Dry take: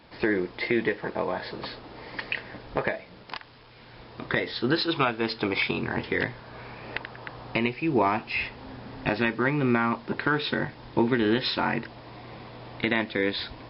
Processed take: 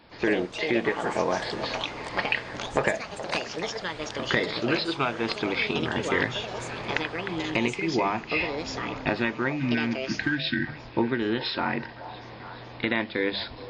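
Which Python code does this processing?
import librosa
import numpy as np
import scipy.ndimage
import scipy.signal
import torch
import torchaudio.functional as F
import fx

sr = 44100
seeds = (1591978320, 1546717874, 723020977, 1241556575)

y = fx.hum_notches(x, sr, base_hz=50, count=4)
y = fx.spec_box(y, sr, start_s=9.53, length_s=1.14, low_hz=360.0, high_hz=1500.0, gain_db=-26)
y = fx.rider(y, sr, range_db=4, speed_s=0.5)
y = fx.echo_pitch(y, sr, ms=98, semitones=5, count=2, db_per_echo=-6.0)
y = fx.echo_stepped(y, sr, ms=424, hz=690.0, octaves=0.7, feedback_pct=70, wet_db=-10.0)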